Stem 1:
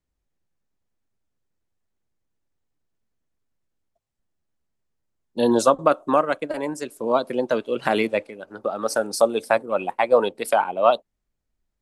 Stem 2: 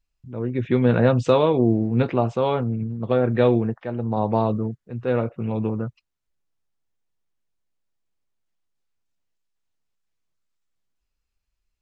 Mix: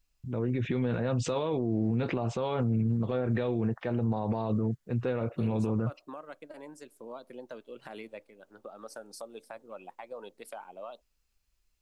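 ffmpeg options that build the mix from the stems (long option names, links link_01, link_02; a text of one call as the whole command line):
ffmpeg -i stem1.wav -i stem2.wav -filter_complex "[0:a]alimiter=limit=-9.5dB:level=0:latency=1:release=111,acompressor=threshold=-28dB:ratio=2,volume=-16dB[link_01];[1:a]highshelf=frequency=4400:gain=6.5,acompressor=threshold=-20dB:ratio=6,volume=2dB[link_02];[link_01][link_02]amix=inputs=2:normalize=0,alimiter=limit=-21dB:level=0:latency=1:release=40" out.wav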